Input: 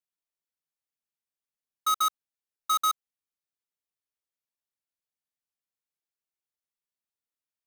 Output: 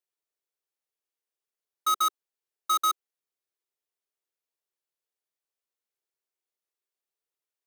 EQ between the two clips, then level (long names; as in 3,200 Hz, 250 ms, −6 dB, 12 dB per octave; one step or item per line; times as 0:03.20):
low shelf with overshoot 280 Hz −10.5 dB, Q 3
0.0 dB